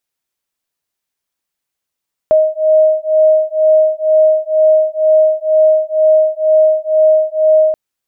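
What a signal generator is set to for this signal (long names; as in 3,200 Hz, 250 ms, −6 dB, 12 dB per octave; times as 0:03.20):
two tones that beat 624 Hz, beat 2.1 Hz, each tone −11 dBFS 5.43 s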